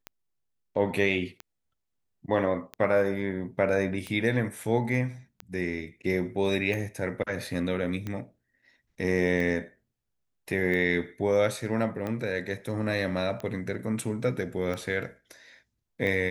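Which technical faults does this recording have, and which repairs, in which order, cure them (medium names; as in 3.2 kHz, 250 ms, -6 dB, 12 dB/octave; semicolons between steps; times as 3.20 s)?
tick 45 rpm -21 dBFS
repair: de-click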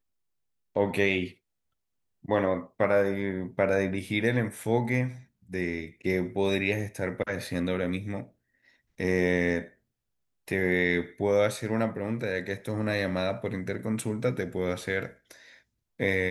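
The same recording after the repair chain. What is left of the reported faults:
nothing left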